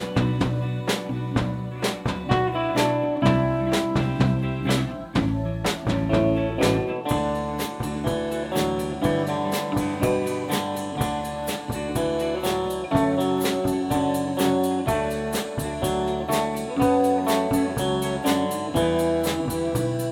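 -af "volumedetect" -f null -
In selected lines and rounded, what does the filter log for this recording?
mean_volume: -23.6 dB
max_volume: -6.1 dB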